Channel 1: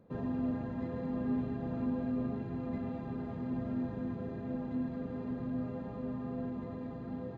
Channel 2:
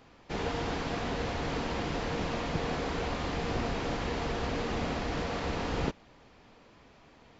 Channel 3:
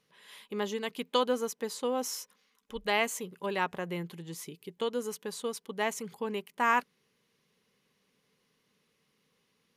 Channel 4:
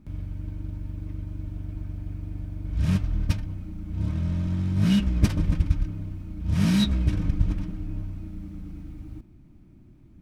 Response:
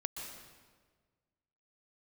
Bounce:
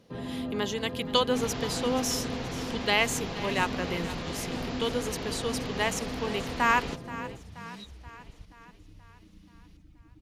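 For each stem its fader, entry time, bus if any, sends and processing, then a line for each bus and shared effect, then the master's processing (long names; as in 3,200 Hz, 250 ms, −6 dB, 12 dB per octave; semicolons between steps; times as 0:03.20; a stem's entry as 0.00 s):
+1.5 dB, 0.00 s, no send, no echo send, mains-hum notches 50/100/150/200/250 Hz
−6.0 dB, 1.05 s, no send, echo send −21.5 dB, no processing
+1.0 dB, 0.00 s, no send, echo send −15.5 dB, no processing
−11.5 dB, 1.00 s, no send, no echo send, reverb reduction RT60 1.5 s; downward compressor 3 to 1, threshold −37 dBFS, peak gain reduction 17.5 dB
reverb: not used
echo: repeating echo 479 ms, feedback 56%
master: parametric band 4,300 Hz +7 dB 2 octaves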